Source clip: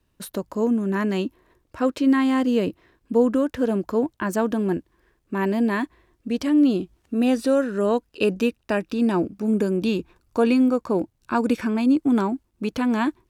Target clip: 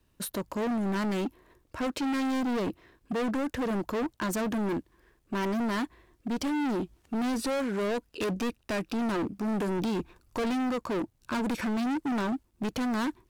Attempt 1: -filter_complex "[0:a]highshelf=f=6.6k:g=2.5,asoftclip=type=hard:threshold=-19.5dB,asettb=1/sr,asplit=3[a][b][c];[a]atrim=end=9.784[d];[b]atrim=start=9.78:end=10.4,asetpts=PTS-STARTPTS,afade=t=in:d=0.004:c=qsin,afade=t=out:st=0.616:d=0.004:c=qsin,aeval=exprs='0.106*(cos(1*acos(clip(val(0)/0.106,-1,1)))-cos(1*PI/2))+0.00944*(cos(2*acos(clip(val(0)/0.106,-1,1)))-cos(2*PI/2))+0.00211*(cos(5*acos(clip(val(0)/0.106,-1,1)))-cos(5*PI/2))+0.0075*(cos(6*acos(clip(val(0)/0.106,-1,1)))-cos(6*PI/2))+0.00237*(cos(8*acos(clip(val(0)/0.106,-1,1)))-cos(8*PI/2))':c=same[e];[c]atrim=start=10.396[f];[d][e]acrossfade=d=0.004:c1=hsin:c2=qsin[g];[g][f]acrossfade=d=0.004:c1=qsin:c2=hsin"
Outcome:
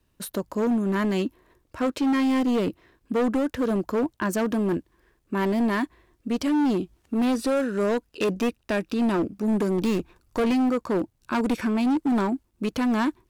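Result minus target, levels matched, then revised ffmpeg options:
hard clip: distortion -5 dB
-filter_complex "[0:a]highshelf=f=6.6k:g=2.5,asoftclip=type=hard:threshold=-27.5dB,asettb=1/sr,asplit=3[a][b][c];[a]atrim=end=9.784[d];[b]atrim=start=9.78:end=10.4,asetpts=PTS-STARTPTS,afade=t=in:d=0.004:c=qsin,afade=t=out:st=0.616:d=0.004:c=qsin,aeval=exprs='0.106*(cos(1*acos(clip(val(0)/0.106,-1,1)))-cos(1*PI/2))+0.00944*(cos(2*acos(clip(val(0)/0.106,-1,1)))-cos(2*PI/2))+0.00211*(cos(5*acos(clip(val(0)/0.106,-1,1)))-cos(5*PI/2))+0.0075*(cos(6*acos(clip(val(0)/0.106,-1,1)))-cos(6*PI/2))+0.00237*(cos(8*acos(clip(val(0)/0.106,-1,1)))-cos(8*PI/2))':c=same[e];[c]atrim=start=10.396[f];[d][e]acrossfade=d=0.004:c1=hsin:c2=qsin[g];[g][f]acrossfade=d=0.004:c1=qsin:c2=hsin"

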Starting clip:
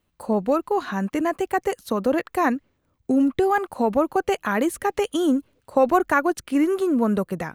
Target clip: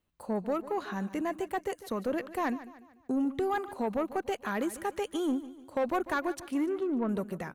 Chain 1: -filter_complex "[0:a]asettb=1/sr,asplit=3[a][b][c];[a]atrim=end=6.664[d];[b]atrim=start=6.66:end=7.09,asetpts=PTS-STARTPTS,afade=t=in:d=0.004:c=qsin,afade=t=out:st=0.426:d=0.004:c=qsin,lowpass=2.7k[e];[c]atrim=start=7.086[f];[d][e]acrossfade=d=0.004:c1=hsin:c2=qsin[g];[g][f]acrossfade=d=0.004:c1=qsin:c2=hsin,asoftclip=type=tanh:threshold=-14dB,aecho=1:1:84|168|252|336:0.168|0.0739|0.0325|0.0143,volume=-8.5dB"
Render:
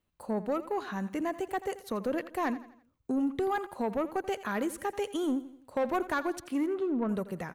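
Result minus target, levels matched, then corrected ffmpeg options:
echo 63 ms early
-filter_complex "[0:a]asettb=1/sr,asplit=3[a][b][c];[a]atrim=end=6.664[d];[b]atrim=start=6.66:end=7.09,asetpts=PTS-STARTPTS,afade=t=in:d=0.004:c=qsin,afade=t=out:st=0.426:d=0.004:c=qsin,lowpass=2.7k[e];[c]atrim=start=7.086[f];[d][e]acrossfade=d=0.004:c1=hsin:c2=qsin[g];[g][f]acrossfade=d=0.004:c1=qsin:c2=hsin,asoftclip=type=tanh:threshold=-14dB,aecho=1:1:147|294|441|588:0.168|0.0739|0.0325|0.0143,volume=-8.5dB"

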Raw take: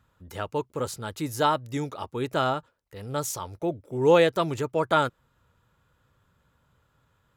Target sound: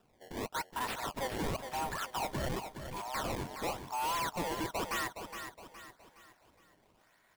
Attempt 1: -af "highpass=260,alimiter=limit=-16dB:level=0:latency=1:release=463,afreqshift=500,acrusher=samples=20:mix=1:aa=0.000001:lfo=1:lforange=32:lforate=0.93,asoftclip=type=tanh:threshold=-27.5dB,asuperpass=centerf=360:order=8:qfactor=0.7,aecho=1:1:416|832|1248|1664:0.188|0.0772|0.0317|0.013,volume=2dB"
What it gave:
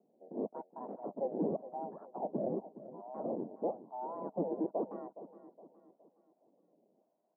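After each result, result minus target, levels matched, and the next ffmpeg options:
500 Hz band +5.5 dB; echo-to-direct -6 dB; soft clip: distortion -5 dB
-af "highpass=260,alimiter=limit=-16dB:level=0:latency=1:release=463,afreqshift=500,acrusher=samples=20:mix=1:aa=0.000001:lfo=1:lforange=32:lforate=0.93,asoftclip=type=tanh:threshold=-27.5dB,aecho=1:1:416|832|1248|1664:0.188|0.0772|0.0317|0.013,volume=2dB"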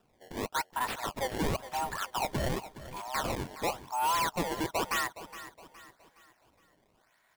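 echo-to-direct -6 dB; soft clip: distortion -5 dB
-af "highpass=260,alimiter=limit=-16dB:level=0:latency=1:release=463,afreqshift=500,acrusher=samples=20:mix=1:aa=0.000001:lfo=1:lforange=32:lforate=0.93,asoftclip=type=tanh:threshold=-27.5dB,aecho=1:1:416|832|1248|1664|2080:0.376|0.154|0.0632|0.0259|0.0106,volume=2dB"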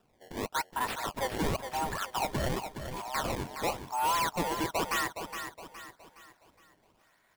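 soft clip: distortion -5 dB
-af "highpass=260,alimiter=limit=-16dB:level=0:latency=1:release=463,afreqshift=500,acrusher=samples=20:mix=1:aa=0.000001:lfo=1:lforange=32:lforate=0.93,asoftclip=type=tanh:threshold=-34.5dB,aecho=1:1:416|832|1248|1664|2080:0.376|0.154|0.0632|0.0259|0.0106,volume=2dB"

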